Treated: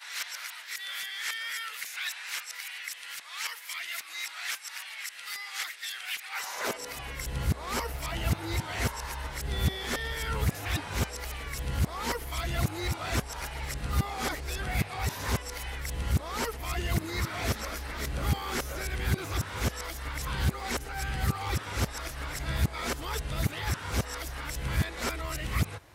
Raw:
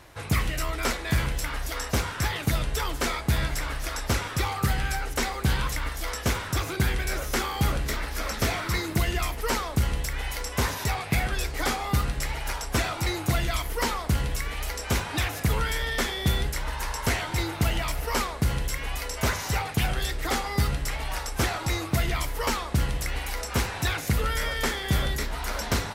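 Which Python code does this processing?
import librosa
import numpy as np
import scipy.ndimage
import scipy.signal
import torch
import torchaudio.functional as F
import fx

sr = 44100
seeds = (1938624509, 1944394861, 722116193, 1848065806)

y = np.flip(x).copy()
y = fx.filter_sweep_highpass(y, sr, from_hz=2000.0, to_hz=66.0, start_s=6.27, end_s=7.11, q=1.3)
y = y * librosa.db_to_amplitude(-5.0)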